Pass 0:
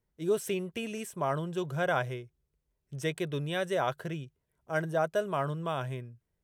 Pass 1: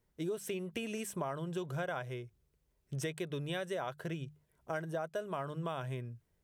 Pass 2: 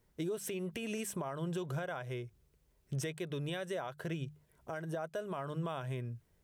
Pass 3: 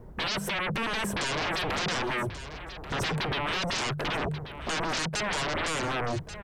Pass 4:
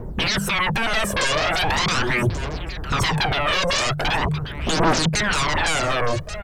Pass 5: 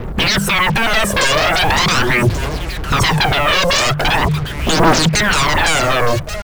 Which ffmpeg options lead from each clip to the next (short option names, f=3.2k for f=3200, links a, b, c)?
-af "bandreject=f=50:t=h:w=6,bandreject=f=100:t=h:w=6,bandreject=f=150:t=h:w=6,bandreject=f=200:t=h:w=6,acompressor=threshold=-40dB:ratio=6,volume=4.5dB"
-af "alimiter=level_in=10.5dB:limit=-24dB:level=0:latency=1:release=235,volume=-10.5dB,volume=5dB"
-filter_complex "[0:a]acrossover=split=1200[a][b];[a]aeval=exprs='0.0335*sin(PI/2*10*val(0)/0.0335)':c=same[c];[c][b]amix=inputs=2:normalize=0,aecho=1:1:1135:0.237,volume=2.5dB"
-af "aphaser=in_gain=1:out_gain=1:delay=1.9:decay=0.61:speed=0.41:type=triangular,volume=7dB"
-af "acrusher=bits=5:mix=0:aa=0.5,volume=7dB"